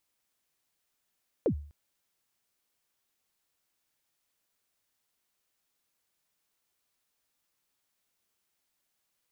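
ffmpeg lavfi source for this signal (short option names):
-f lavfi -i "aevalsrc='0.1*pow(10,-3*t/0.47)*sin(2*PI*(560*0.085/log(73/560)*(exp(log(73/560)*min(t,0.085)/0.085)-1)+73*max(t-0.085,0)))':d=0.25:s=44100"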